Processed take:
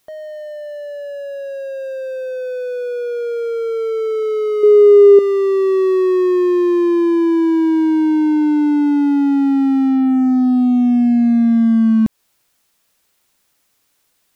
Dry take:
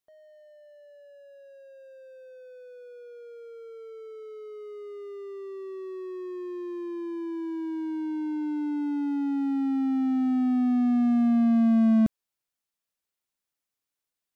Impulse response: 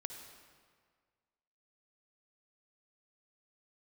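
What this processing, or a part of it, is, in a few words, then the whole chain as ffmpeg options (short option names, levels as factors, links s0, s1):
loud club master: -filter_complex "[0:a]acompressor=threshold=0.0447:ratio=2,asoftclip=type=hard:threshold=0.0708,alimiter=level_in=37.6:limit=0.891:release=50:level=0:latency=1,asettb=1/sr,asplit=3[s0][s1][s2];[s0]atrim=end=4.634[s3];[s1]atrim=start=4.63:end=5.19,asetpts=PTS-STARTPTS,afade=t=in:d=0.004:c=qsin,afade=t=out:st=0.556:d=0.004:c=qsin,equalizer=f=390:t=o:w=0.49:g=11[s4];[s2]atrim=start=5.186[s5];[s3][s4]acrossfade=d=0.004:c1=hsin:c2=qsin[s6];[s6][s5]acrossfade=d=0.004:c1=qsin:c2=hsin,volume=0.398"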